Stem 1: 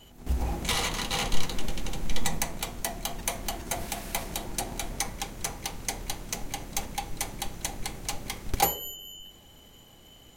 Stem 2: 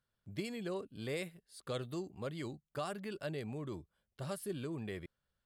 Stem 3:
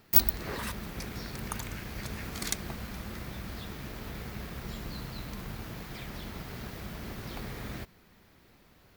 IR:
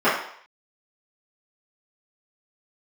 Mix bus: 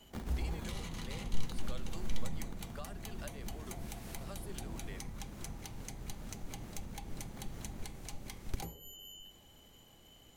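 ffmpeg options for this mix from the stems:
-filter_complex "[0:a]volume=-7dB[link_01];[1:a]highpass=640,volume=2.5dB[link_02];[2:a]lowpass=frequency=1900:poles=1,acrusher=samples=17:mix=1:aa=0.000001,volume=-8dB[link_03];[link_01][link_02][link_03]amix=inputs=3:normalize=0,acrossover=split=280[link_04][link_05];[link_05]acompressor=threshold=-45dB:ratio=10[link_06];[link_04][link_06]amix=inputs=2:normalize=0"

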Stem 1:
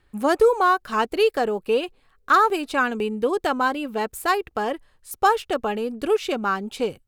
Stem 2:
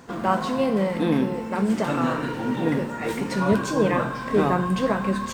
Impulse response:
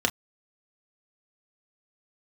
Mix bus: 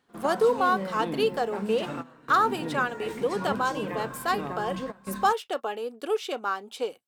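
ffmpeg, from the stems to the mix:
-filter_complex "[0:a]highpass=440,volume=-5.5dB,asplit=3[link_01][link_02][link_03];[link_02]volume=-21.5dB[link_04];[1:a]bandreject=frequency=60:width_type=h:width=6,bandreject=frequency=120:width_type=h:width=6,bandreject=frequency=180:width_type=h:width=6,alimiter=limit=-13.5dB:level=0:latency=1:release=72,volume=-9.5dB[link_05];[link_03]apad=whole_len=235084[link_06];[link_05][link_06]sidechaingate=range=-18dB:threshold=-54dB:ratio=16:detection=peak[link_07];[2:a]atrim=start_sample=2205[link_08];[link_04][link_08]afir=irnorm=-1:irlink=0[link_09];[link_01][link_07][link_09]amix=inputs=3:normalize=0"

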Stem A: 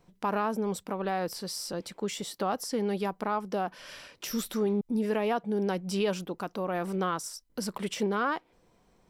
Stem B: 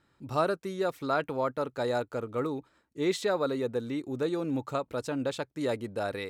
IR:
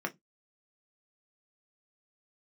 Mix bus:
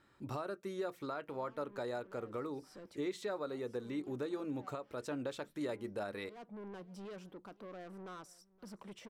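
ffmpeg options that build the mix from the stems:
-filter_complex "[0:a]highshelf=frequency=2600:gain=-9.5,asoftclip=type=tanh:threshold=-33dB,adelay=1050,volume=-12.5dB,asplit=3[link_01][link_02][link_03];[link_02]volume=-20dB[link_04];[link_03]volume=-23dB[link_05];[1:a]acompressor=threshold=-41dB:ratio=2,volume=-1.5dB,asplit=3[link_06][link_07][link_08];[link_07]volume=-11.5dB[link_09];[link_08]apad=whole_len=447198[link_10];[link_01][link_10]sidechaincompress=threshold=-56dB:ratio=8:attack=16:release=130[link_11];[2:a]atrim=start_sample=2205[link_12];[link_04][link_09]amix=inputs=2:normalize=0[link_13];[link_13][link_12]afir=irnorm=-1:irlink=0[link_14];[link_05]aecho=0:1:520:1[link_15];[link_11][link_06][link_14][link_15]amix=inputs=4:normalize=0,alimiter=level_in=5.5dB:limit=-24dB:level=0:latency=1:release=496,volume=-5.5dB"

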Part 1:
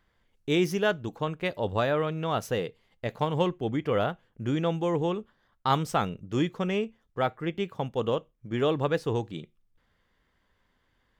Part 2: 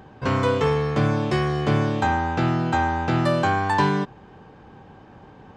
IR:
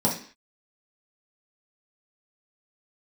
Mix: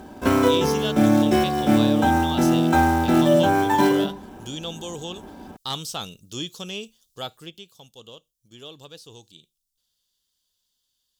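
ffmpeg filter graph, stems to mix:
-filter_complex "[0:a]acrossover=split=3300[link_01][link_02];[link_02]acompressor=threshold=-58dB:ratio=4:attack=1:release=60[link_03];[link_01][link_03]amix=inputs=2:normalize=0,aexciter=amount=14.8:drive=9.2:freq=3300,asoftclip=type=hard:threshold=-10.5dB,volume=-8dB,afade=type=out:start_time=7.34:duration=0.31:silence=0.281838,asplit=2[link_04][link_05];[1:a]bandreject=frequency=1900:width=11,aecho=1:1:3:0.38,acrusher=bits=4:mode=log:mix=0:aa=0.000001,volume=1dB,asplit=2[link_06][link_07];[link_07]volume=-17.5dB[link_08];[link_05]apad=whole_len=245419[link_09];[link_06][link_09]sidechaincompress=threshold=-37dB:ratio=8:attack=23:release=173[link_10];[2:a]atrim=start_sample=2205[link_11];[link_08][link_11]afir=irnorm=-1:irlink=0[link_12];[link_04][link_10][link_12]amix=inputs=3:normalize=0"

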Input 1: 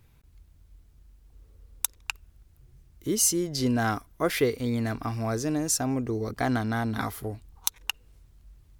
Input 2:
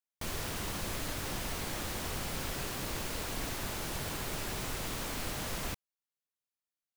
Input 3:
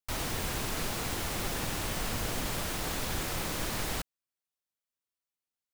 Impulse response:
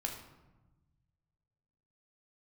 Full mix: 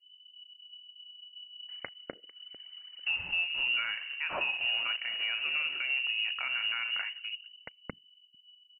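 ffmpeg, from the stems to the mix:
-filter_complex "[0:a]adynamicequalizer=threshold=0.00631:dfrequency=2200:dqfactor=0.7:tfrequency=2200:tqfactor=0.7:attack=5:release=100:ratio=0.375:range=2.5:mode=boostabove:tftype=highshelf,volume=-0.5dB,afade=type=out:start_time=6.76:duration=0.37:silence=0.398107,asplit=4[link_01][link_02][link_03][link_04];[link_02]volume=-3dB[link_05];[link_03]volume=-17dB[link_06];[1:a]aeval=exprs='(mod(75*val(0)+1,2)-1)/75':channel_layout=same,adelay=950,volume=-10.5dB[link_07];[2:a]acrossover=split=700|2200[link_08][link_09][link_10];[link_08]acompressor=threshold=-47dB:ratio=4[link_11];[link_09]acompressor=threshold=-42dB:ratio=4[link_12];[link_10]acompressor=threshold=-47dB:ratio=4[link_13];[link_11][link_12][link_13]amix=inputs=3:normalize=0,adelay=1600,volume=-3dB,asplit=2[link_14][link_15];[link_15]volume=-15.5dB[link_16];[link_04]apad=whole_len=323686[link_17];[link_14][link_17]sidechaincompress=threshold=-28dB:ratio=10:attack=28:release=1070[link_18];[3:a]atrim=start_sample=2205[link_19];[link_05][link_16]amix=inputs=2:normalize=0[link_20];[link_20][link_19]afir=irnorm=-1:irlink=0[link_21];[link_06]aecho=0:1:448|896|1344|1792|2240:1|0.39|0.152|0.0593|0.0231[link_22];[link_01][link_07][link_18][link_21][link_22]amix=inputs=5:normalize=0,anlmdn=6.31,lowpass=frequency=2600:width_type=q:width=0.5098,lowpass=frequency=2600:width_type=q:width=0.6013,lowpass=frequency=2600:width_type=q:width=0.9,lowpass=frequency=2600:width_type=q:width=2.563,afreqshift=-3000,alimiter=limit=-22.5dB:level=0:latency=1:release=402"

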